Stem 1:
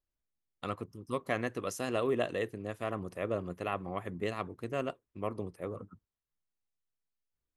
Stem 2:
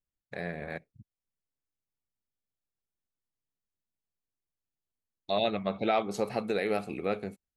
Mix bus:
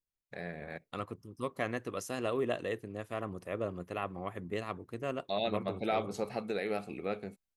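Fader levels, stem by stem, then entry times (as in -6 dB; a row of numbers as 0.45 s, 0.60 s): -2.0 dB, -5.0 dB; 0.30 s, 0.00 s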